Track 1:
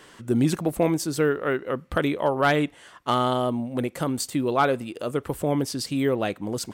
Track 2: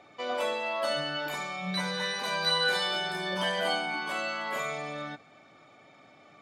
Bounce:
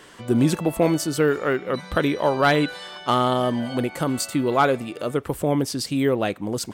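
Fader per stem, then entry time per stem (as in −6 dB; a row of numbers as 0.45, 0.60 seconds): +2.5, −8.5 decibels; 0.00, 0.00 seconds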